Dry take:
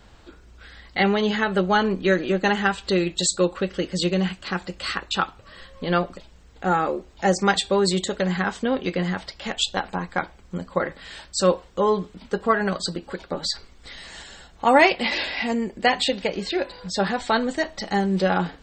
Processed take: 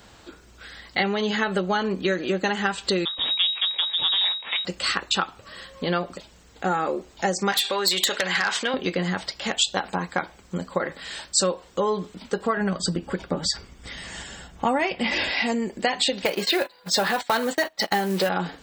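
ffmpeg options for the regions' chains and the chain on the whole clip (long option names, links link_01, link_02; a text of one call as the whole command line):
ffmpeg -i in.wav -filter_complex "[0:a]asettb=1/sr,asplit=3[link_01][link_02][link_03];[link_01]atrim=end=3.054[link_04];[link_02]atrim=start=3.05:end=4.65,asetpts=PTS-STARTPTS,afade=type=in:duration=0.004:curve=qsin,afade=type=out:start_time=1.596:duration=0.004:curve=qsin,aeval=exprs='max(val(0),0)':channel_layout=same,lowpass=frequency=3200:width_type=q:width=0.5098,lowpass=frequency=3200:width_type=q:width=0.6013,lowpass=frequency=3200:width_type=q:width=0.9,lowpass=frequency=3200:width_type=q:width=2.563,afreqshift=-3800[link_05];[link_03]atrim=start=4.646[link_06];[link_04][link_05]acrossfade=duration=0.004:curve1=hsin:curve2=qsin[link_07];[link_07][link_06]acrossfade=duration=0.004:curve1=qsin:curve2=hsin,asettb=1/sr,asplit=3[link_08][link_09][link_10];[link_08]atrim=end=7.524[link_11];[link_09]atrim=start=7.52:end=8.74,asetpts=PTS-STARTPTS,afade=type=in:duration=0.004:curve=qsin,afade=type=out:start_time=1.216:duration=0.004:curve=qsin,acompressor=threshold=-25dB:ratio=4:attack=3.2:release=140:knee=1:detection=peak,bandpass=frequency=2500:width_type=q:width=0.76,aeval=exprs='0.158*sin(PI/2*2.82*val(0)/0.158)':channel_layout=same[link_12];[link_10]atrim=start=8.736[link_13];[link_11][link_12]acrossfade=duration=0.004:curve1=hsin:curve2=qsin[link_14];[link_14][link_13]acrossfade=duration=0.004:curve1=qsin:curve2=hsin,asettb=1/sr,asplit=3[link_15][link_16][link_17];[link_15]atrim=end=12.574[link_18];[link_16]atrim=start=12.57:end=15.3,asetpts=PTS-STARTPTS,afade=type=in:duration=0.004:curve=qsin,afade=type=out:start_time=2.726:duration=0.004:curve=qsin,bass=frequency=250:gain=10,treble=frequency=4000:gain=-3,bandreject=frequency=4100:width=5.9[link_19];[link_17]atrim=start=15.296[link_20];[link_18][link_19]acrossfade=duration=0.004:curve1=hsin:curve2=qsin[link_21];[link_21][link_20]acrossfade=duration=0.004:curve1=qsin:curve2=hsin,asettb=1/sr,asplit=3[link_22][link_23][link_24];[link_22]atrim=end=16.254[link_25];[link_23]atrim=start=16.25:end=18.29,asetpts=PTS-STARTPTS,afade=type=in:duration=0.004:curve=qsin,afade=type=out:start_time=2.036:duration=0.004:curve=qsin,agate=range=-21dB:threshold=-33dB:ratio=16:release=100:detection=peak,asplit=2[link_26][link_27];[link_27]highpass=frequency=720:poles=1,volume=14dB,asoftclip=type=tanh:threshold=-8.5dB[link_28];[link_26][link_28]amix=inputs=2:normalize=0,lowpass=frequency=3400:poles=1,volume=-6dB,acrusher=bits=6:mode=log:mix=0:aa=0.000001[link_29];[link_24]atrim=start=18.286[link_30];[link_25][link_29]acrossfade=duration=0.004:curve1=hsin:curve2=qsin[link_31];[link_31][link_30]acrossfade=duration=0.004:curve1=qsin:curve2=hsin,acompressor=threshold=-23dB:ratio=6,highpass=frequency=130:poles=1,highshelf=frequency=6800:gain=9.5,volume=3dB" out.wav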